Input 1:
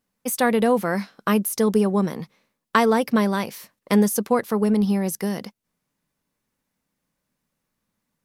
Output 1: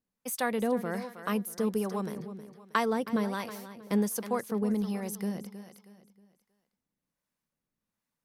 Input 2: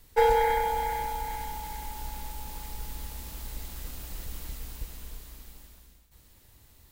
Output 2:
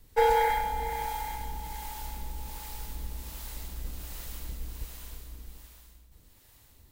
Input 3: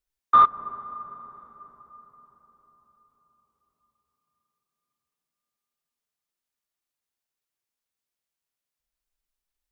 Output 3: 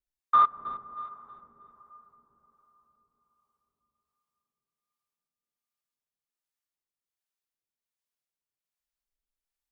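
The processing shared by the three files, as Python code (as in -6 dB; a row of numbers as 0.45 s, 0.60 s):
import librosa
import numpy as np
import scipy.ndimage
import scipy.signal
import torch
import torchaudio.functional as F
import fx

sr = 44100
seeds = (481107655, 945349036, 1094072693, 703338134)

p1 = x + fx.echo_feedback(x, sr, ms=317, feedback_pct=36, wet_db=-12, dry=0)
p2 = fx.harmonic_tremolo(p1, sr, hz=1.3, depth_pct=50, crossover_hz=540.0)
y = p2 * 10.0 ** (-12 / 20.0) / np.max(np.abs(p2))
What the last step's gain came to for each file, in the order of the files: -8.0 dB, +1.0 dB, -4.5 dB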